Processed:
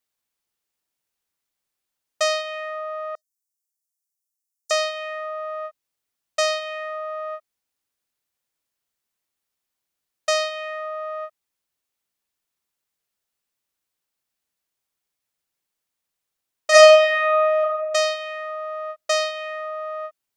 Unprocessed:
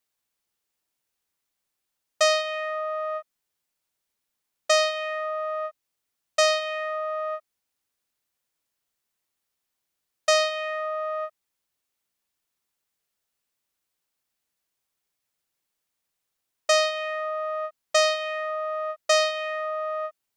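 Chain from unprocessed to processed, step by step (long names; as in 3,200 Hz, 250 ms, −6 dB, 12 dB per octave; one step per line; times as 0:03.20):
0:03.15–0:04.71: inverse Chebyshev high-pass filter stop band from 2,900 Hz, stop band 40 dB
0:16.70–0:17.59: thrown reverb, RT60 1.3 s, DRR −10.5 dB
level −1 dB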